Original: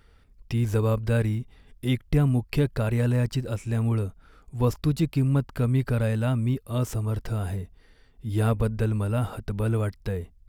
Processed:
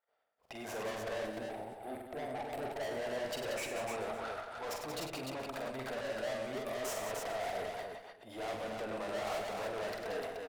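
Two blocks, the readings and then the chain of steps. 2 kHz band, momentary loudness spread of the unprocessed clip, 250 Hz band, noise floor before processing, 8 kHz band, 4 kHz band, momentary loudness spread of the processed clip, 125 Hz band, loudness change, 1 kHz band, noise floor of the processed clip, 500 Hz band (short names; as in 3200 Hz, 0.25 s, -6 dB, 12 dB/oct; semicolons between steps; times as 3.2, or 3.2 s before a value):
-3.5 dB, 9 LU, -18.5 dB, -58 dBFS, -2.5 dB, -3.0 dB, 6 LU, -30.5 dB, -13.5 dB, -2.0 dB, -60 dBFS, -6.0 dB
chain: gate -50 dBFS, range -37 dB; spectral gain 1.25–2.97, 930–7600 Hz -17 dB; high shelf 4400 Hz -11 dB; transient shaper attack -8 dB, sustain +10 dB; reverse; compressor 6:1, threshold -32 dBFS, peak gain reduction 13.5 dB; reverse; resonant high-pass 660 Hz, resonance Q 4.9; tube stage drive 48 dB, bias 0.3; on a send: tapped delay 46/99/183/300/428/558 ms -5/-7.5/-7/-3.5/-17/-18.5 dB; on the sum: gain +9 dB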